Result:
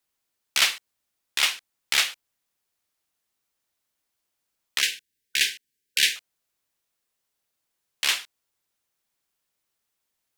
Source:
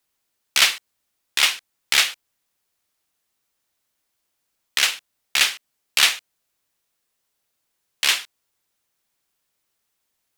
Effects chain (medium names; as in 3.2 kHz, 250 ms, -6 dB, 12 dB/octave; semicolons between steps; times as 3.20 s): 4.81–6.16 s: brick-wall FIR band-stop 510–1500 Hz; trim -4.5 dB